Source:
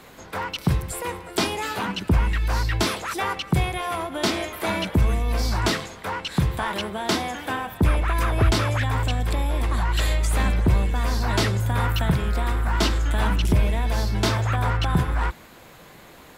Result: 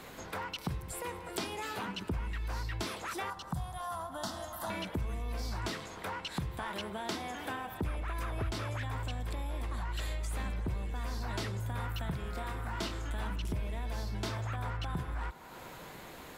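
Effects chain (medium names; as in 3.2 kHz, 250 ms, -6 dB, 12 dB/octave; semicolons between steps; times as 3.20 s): 3.30–4.70 s: static phaser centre 970 Hz, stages 4; 12.23–13.10 s: doubling 27 ms -7 dB; feedback echo behind a band-pass 102 ms, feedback 80%, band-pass 680 Hz, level -18 dB; compression 2.5:1, threshold -38 dBFS, peak gain reduction 15.5 dB; trim -2 dB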